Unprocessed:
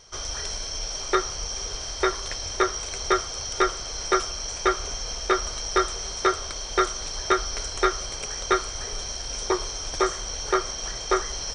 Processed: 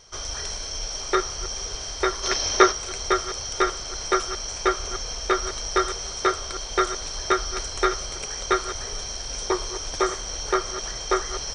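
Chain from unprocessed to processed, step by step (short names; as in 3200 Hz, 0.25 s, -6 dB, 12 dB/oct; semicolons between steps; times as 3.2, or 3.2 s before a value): reverse delay 0.146 s, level -12.5 dB; spectral gain 2.24–2.72, 210–6700 Hz +7 dB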